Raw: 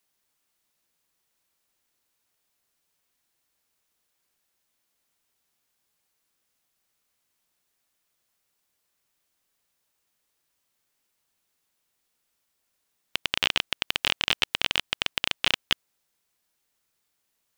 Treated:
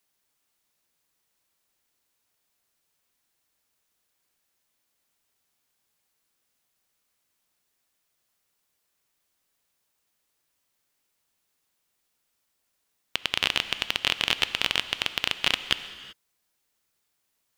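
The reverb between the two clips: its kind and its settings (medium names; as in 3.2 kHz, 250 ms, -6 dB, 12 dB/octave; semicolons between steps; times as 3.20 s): gated-style reverb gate 410 ms flat, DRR 12 dB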